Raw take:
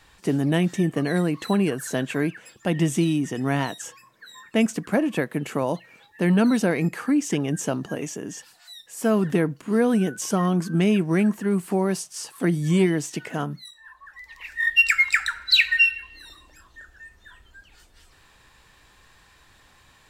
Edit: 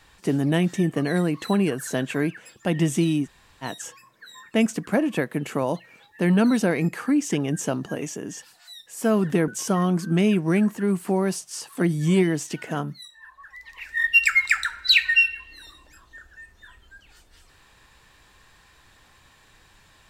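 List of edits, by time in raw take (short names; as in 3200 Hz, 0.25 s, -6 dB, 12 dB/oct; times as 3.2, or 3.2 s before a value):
3.25–3.64 room tone, crossfade 0.06 s
9.48–10.11 cut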